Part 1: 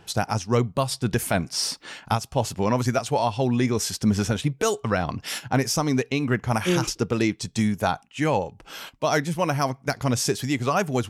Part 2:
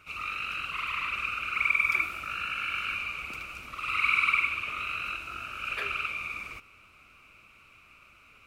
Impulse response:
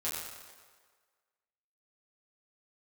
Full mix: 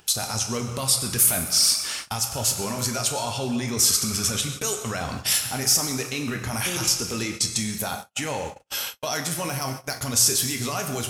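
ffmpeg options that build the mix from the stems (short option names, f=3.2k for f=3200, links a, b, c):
-filter_complex "[0:a]alimiter=limit=-20.5dB:level=0:latency=1:release=16,crystalizer=i=5:c=0,volume=-5.5dB,asplit=2[a][b];[b]volume=-4.5dB[c];[1:a]lowpass=f=1.7k:w=0.5412,lowpass=f=1.7k:w=1.3066,volume=-10dB[d];[2:a]atrim=start_sample=2205[e];[c][e]afir=irnorm=-1:irlink=0[f];[a][d][f]amix=inputs=3:normalize=0,agate=range=-52dB:threshold=-33dB:ratio=16:detection=peak,acompressor=mode=upward:threshold=-25dB:ratio=2.5"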